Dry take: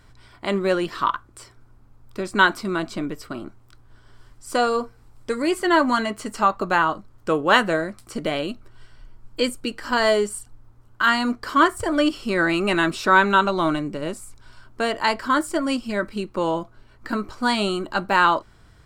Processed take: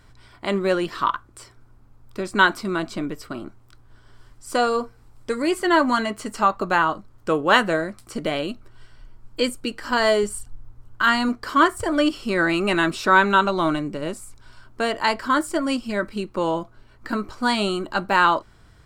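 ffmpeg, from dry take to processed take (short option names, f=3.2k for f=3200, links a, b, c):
-filter_complex "[0:a]asettb=1/sr,asplit=3[a][b][c];[a]atrim=end=10.234[d];[b]atrim=start=10.23:end=11.29,asetpts=PTS-STARTPTS,afade=t=in:d=0.004:c=qsin,afade=t=out:st=1.056:d=0.004:c=qsin,lowshelf=f=92:g=10[e];[c]atrim=start=11.286[f];[d][e]acrossfade=d=0.004:c1=hsin:c2=qsin[g];[g][f]acrossfade=d=0.004:c1=qsin:c2=hsin"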